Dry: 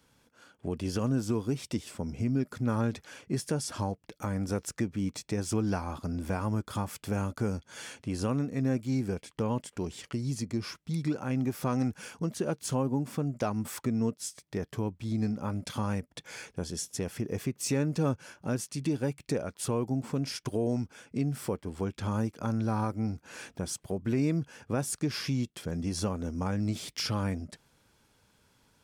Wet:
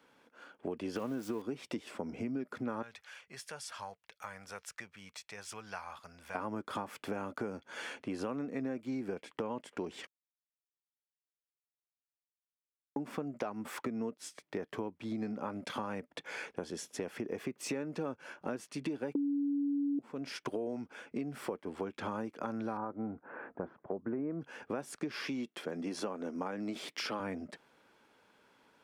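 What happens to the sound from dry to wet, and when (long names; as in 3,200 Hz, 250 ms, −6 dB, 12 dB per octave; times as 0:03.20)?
0:00.96–0:01.42: spike at every zero crossing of −31.5 dBFS
0:02.82–0:06.35: guitar amp tone stack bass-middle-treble 10-0-10
0:10.07–0:12.96: silence
0:19.15–0:19.99: beep over 284 Hz −11 dBFS
0:22.77–0:24.41: low-pass filter 1,500 Hz 24 dB per octave
0:25.20–0:27.20: high-pass filter 190 Hz
whole clip: three-way crossover with the lows and the highs turned down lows −22 dB, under 230 Hz, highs −14 dB, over 3,200 Hz; downward compressor, threshold −38 dBFS; level +4 dB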